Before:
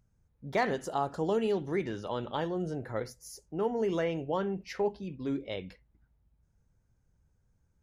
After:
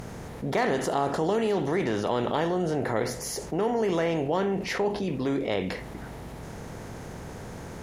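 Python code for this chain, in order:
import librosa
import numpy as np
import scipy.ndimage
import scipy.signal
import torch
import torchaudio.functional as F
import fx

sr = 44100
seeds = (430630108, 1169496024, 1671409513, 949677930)

y = fx.bin_compress(x, sr, power=0.6)
y = fx.env_flatten(y, sr, amount_pct=50)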